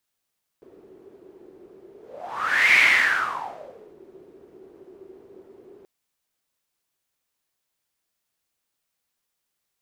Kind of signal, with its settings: whoosh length 5.23 s, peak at 2.15, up 0.89 s, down 1.29 s, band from 380 Hz, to 2200 Hz, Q 9.5, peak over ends 32 dB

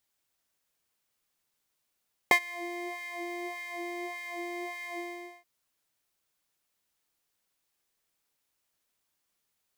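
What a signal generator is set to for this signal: synth patch with filter wobble F5, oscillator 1 triangle, oscillator 2 sine, interval +19 st, oscillator 2 level -1.5 dB, sub -1 dB, noise -21 dB, filter highpass, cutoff 190 Hz, Q 1.3, filter envelope 2.5 oct, filter decay 0.09 s, filter sustain 50%, attack 2 ms, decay 0.08 s, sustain -23 dB, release 0.46 s, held 2.67 s, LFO 1.7 Hz, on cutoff 1.8 oct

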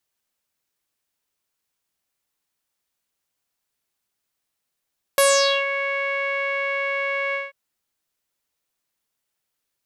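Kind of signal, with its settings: synth note saw C#5 12 dB/oct, low-pass 2200 Hz, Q 5.4, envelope 2.5 oct, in 0.46 s, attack 1.6 ms, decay 0.47 s, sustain -13 dB, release 0.18 s, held 2.16 s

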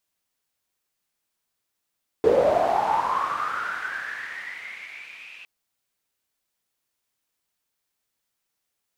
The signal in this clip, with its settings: swept filtered noise pink, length 3.21 s bandpass, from 430 Hz, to 2600 Hz, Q 11, linear, gain ramp -28 dB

